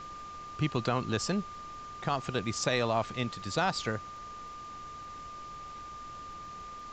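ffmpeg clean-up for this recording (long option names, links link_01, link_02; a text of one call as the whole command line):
ffmpeg -i in.wav -af "adeclick=threshold=4,bandreject=frequency=1200:width=30,afftdn=noise_reduction=30:noise_floor=-44" out.wav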